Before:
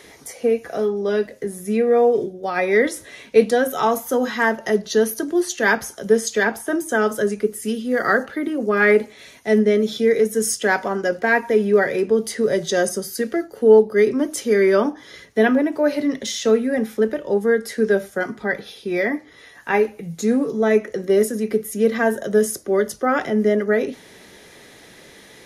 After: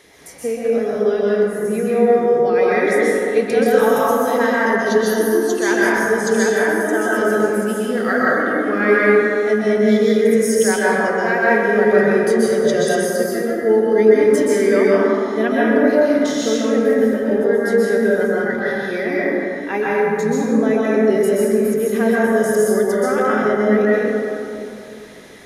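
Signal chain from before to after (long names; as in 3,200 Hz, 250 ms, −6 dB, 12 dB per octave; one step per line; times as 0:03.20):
dense smooth reverb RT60 2.7 s, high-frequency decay 0.35×, pre-delay 115 ms, DRR −7 dB
level −4.5 dB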